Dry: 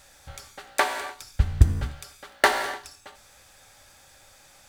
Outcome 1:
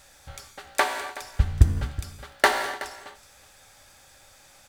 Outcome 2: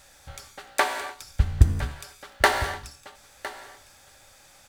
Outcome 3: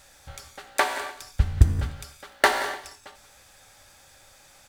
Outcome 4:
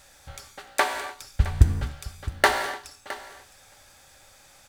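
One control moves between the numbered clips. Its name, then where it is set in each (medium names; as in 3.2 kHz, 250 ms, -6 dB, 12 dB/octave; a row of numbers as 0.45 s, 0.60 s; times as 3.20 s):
delay, time: 373 ms, 1009 ms, 179 ms, 664 ms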